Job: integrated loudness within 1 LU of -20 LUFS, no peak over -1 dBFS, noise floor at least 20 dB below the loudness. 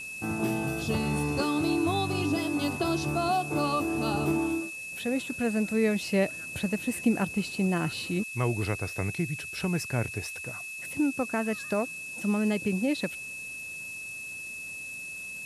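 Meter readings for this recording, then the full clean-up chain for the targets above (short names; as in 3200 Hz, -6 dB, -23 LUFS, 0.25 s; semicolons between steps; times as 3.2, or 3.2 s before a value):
steady tone 2600 Hz; tone level -37 dBFS; noise floor -40 dBFS; noise floor target -50 dBFS; loudness -29.5 LUFS; peak -13.5 dBFS; loudness target -20.0 LUFS
-> notch 2600 Hz, Q 30; denoiser 10 dB, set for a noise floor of -40 dBFS; gain +9.5 dB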